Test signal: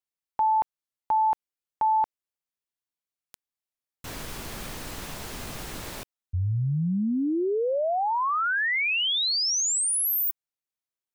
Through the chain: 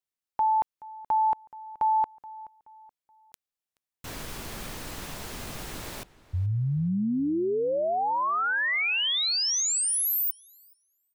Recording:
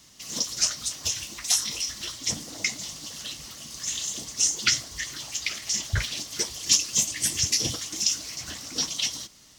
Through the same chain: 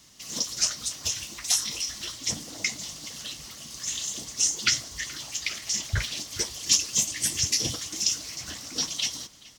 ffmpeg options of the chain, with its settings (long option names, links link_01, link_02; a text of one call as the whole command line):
ffmpeg -i in.wav -filter_complex "[0:a]asplit=2[link_01][link_02];[link_02]adelay=426,lowpass=frequency=3500:poles=1,volume=-19dB,asplit=2[link_03][link_04];[link_04]adelay=426,lowpass=frequency=3500:poles=1,volume=0.37,asplit=2[link_05][link_06];[link_06]adelay=426,lowpass=frequency=3500:poles=1,volume=0.37[link_07];[link_01][link_03][link_05][link_07]amix=inputs=4:normalize=0,volume=-1dB" out.wav